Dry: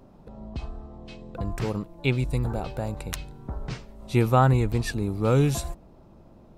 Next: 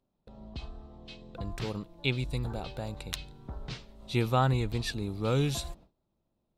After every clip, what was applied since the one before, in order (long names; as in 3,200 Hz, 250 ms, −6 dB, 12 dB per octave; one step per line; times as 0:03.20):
noise gate with hold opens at −40 dBFS
parametric band 3,700 Hz +10.5 dB 0.99 octaves
level −7 dB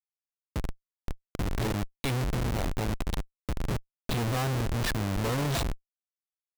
in parallel at +1.5 dB: brickwall limiter −22 dBFS, peak gain reduction 8.5 dB
on the sum: comparator with hysteresis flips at −28.5 dBFS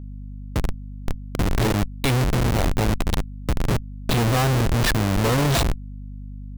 mains hum 50 Hz, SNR 13 dB
level +9 dB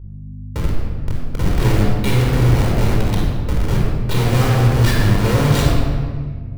rectangular room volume 2,400 cubic metres, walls mixed, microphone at 4.6 metres
level −5 dB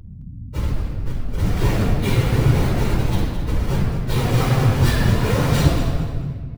random phases in long frames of 50 ms
on a send: repeating echo 215 ms, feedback 29%, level −11 dB
on the sum: level −3 dB